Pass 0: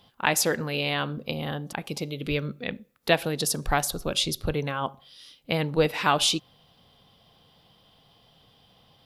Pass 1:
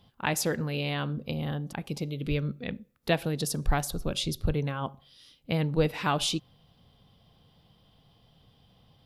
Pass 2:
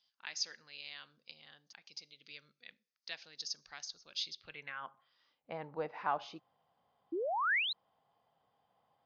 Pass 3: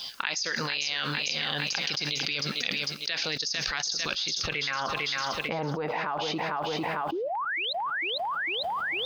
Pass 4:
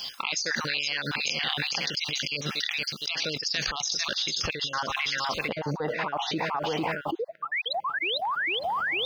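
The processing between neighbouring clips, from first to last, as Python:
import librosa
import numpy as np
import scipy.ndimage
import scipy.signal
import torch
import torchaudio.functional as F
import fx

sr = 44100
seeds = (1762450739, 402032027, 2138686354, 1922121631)

y1 = fx.low_shelf(x, sr, hz=250.0, db=11.5)
y1 = F.gain(torch.from_numpy(y1), -6.5).numpy()
y2 = fx.filter_sweep_bandpass(y1, sr, from_hz=5200.0, to_hz=830.0, start_s=4.07, end_s=5.33, q=2.0)
y2 = fx.spec_paint(y2, sr, seeds[0], shape='rise', start_s=7.12, length_s=0.61, low_hz=310.0, high_hz=4200.0, level_db=-31.0)
y2 = scipy.signal.sosfilt(scipy.signal.cheby1(6, 6, 6600.0, 'lowpass', fs=sr, output='sos'), y2)
y2 = F.gain(torch.from_numpy(y2), 1.0).numpy()
y3 = fx.filter_lfo_notch(y2, sr, shape='saw_down', hz=3.4, low_hz=460.0, high_hz=2100.0, q=2.9)
y3 = fx.echo_feedback(y3, sr, ms=450, feedback_pct=47, wet_db=-12.5)
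y3 = fx.env_flatten(y3, sr, amount_pct=100)
y4 = fx.spec_dropout(y3, sr, seeds[1], share_pct=30)
y4 = F.gain(torch.from_numpy(y4), 2.5).numpy()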